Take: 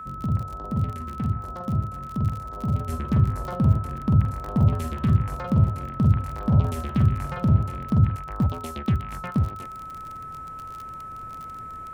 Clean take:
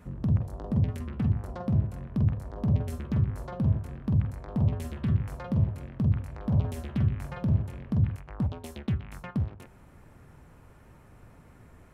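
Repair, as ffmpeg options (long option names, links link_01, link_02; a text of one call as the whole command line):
ffmpeg -i in.wav -af "adeclick=threshold=4,bandreject=frequency=1300:width=30,asetnsamples=nb_out_samples=441:pad=0,asendcmd='2.89 volume volume -6dB',volume=0dB" out.wav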